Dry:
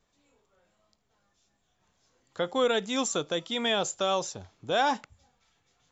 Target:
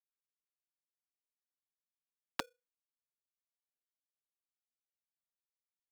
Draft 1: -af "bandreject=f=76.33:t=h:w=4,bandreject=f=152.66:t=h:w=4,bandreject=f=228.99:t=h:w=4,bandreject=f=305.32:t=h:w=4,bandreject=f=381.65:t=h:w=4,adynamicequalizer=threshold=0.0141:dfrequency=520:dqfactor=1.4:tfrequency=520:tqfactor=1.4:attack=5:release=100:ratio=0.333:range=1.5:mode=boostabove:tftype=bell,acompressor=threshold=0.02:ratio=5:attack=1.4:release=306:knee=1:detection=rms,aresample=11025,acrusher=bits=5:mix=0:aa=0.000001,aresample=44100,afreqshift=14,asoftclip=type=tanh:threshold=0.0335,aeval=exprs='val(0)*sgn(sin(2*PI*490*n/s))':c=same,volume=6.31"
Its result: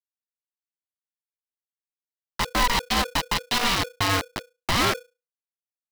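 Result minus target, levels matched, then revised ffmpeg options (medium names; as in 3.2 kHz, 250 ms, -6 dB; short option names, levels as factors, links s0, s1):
compression: peak gain reduction -8.5 dB
-af "bandreject=f=76.33:t=h:w=4,bandreject=f=152.66:t=h:w=4,bandreject=f=228.99:t=h:w=4,bandreject=f=305.32:t=h:w=4,bandreject=f=381.65:t=h:w=4,adynamicequalizer=threshold=0.0141:dfrequency=520:dqfactor=1.4:tfrequency=520:tqfactor=1.4:attack=5:release=100:ratio=0.333:range=1.5:mode=boostabove:tftype=bell,acompressor=threshold=0.00596:ratio=5:attack=1.4:release=306:knee=1:detection=rms,aresample=11025,acrusher=bits=5:mix=0:aa=0.000001,aresample=44100,afreqshift=14,asoftclip=type=tanh:threshold=0.0335,aeval=exprs='val(0)*sgn(sin(2*PI*490*n/s))':c=same,volume=6.31"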